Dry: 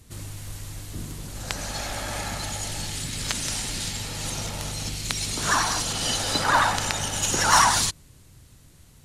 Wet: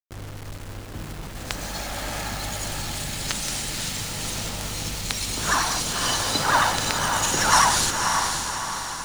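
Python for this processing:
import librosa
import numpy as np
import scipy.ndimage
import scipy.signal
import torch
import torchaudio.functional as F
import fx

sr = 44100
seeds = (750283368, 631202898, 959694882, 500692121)

y = fx.delta_hold(x, sr, step_db=-33.5)
y = fx.echo_diffused(y, sr, ms=543, feedback_pct=53, wet_db=-5)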